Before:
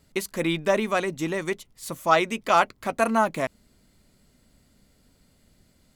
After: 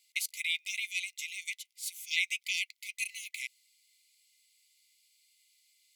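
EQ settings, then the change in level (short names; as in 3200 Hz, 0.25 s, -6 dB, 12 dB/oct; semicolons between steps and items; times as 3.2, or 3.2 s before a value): brick-wall FIR high-pass 2000 Hz; 0.0 dB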